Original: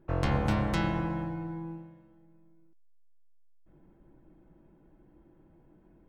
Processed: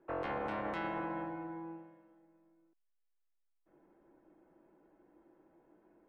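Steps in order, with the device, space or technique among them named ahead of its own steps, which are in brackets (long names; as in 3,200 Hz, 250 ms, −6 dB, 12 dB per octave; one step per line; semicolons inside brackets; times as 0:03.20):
DJ mixer with the lows and highs turned down (three-way crossover with the lows and the highs turned down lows −22 dB, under 290 Hz, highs −18 dB, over 2,800 Hz; brickwall limiter −29.5 dBFS, peak gain reduction 9.5 dB)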